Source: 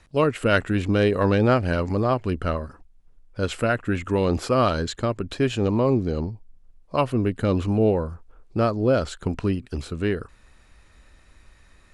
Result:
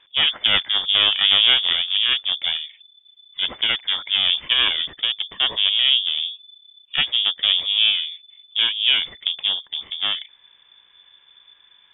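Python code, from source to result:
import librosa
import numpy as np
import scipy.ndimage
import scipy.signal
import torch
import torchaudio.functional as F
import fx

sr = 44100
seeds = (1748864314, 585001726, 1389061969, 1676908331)

y = fx.cheby_harmonics(x, sr, harmonics=(4,), levels_db=(-7,), full_scale_db=-5.5)
y = fx.freq_invert(y, sr, carrier_hz=3500)
y = y * librosa.db_to_amplitude(-1.5)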